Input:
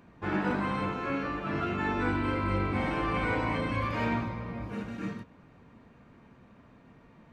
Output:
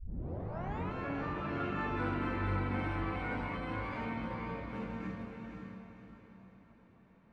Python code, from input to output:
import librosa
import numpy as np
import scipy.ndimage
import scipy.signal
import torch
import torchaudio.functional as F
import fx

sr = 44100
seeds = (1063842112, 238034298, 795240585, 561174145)

p1 = fx.tape_start_head(x, sr, length_s=0.94)
p2 = fx.doppler_pass(p1, sr, speed_mps=7, closest_m=6.6, pass_at_s=1.94)
p3 = fx.high_shelf(p2, sr, hz=5600.0, db=-10.5)
p4 = fx.over_compress(p3, sr, threshold_db=-44.0, ratio=-1.0)
p5 = p3 + F.gain(torch.from_numpy(p4), 0.0).numpy()
p6 = fx.doubler(p5, sr, ms=22.0, db=-10.5)
p7 = p6 + fx.echo_diffused(p6, sr, ms=516, feedback_pct=40, wet_db=-4.0, dry=0)
y = F.gain(torch.from_numpy(p7), -7.0).numpy()